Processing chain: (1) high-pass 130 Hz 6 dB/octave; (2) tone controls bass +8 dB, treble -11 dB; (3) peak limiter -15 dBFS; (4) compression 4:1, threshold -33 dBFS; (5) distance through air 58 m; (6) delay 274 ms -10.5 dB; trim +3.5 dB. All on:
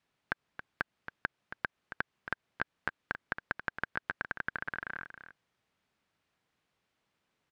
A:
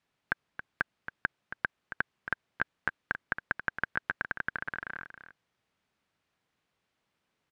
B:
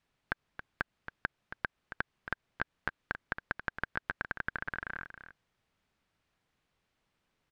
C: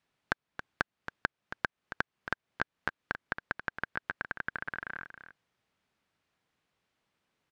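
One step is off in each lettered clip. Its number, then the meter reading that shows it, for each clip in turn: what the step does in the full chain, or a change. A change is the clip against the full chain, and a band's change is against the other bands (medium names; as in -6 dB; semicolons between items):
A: 4, mean gain reduction 3.0 dB; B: 1, 125 Hz band +3.0 dB; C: 3, mean gain reduction 2.5 dB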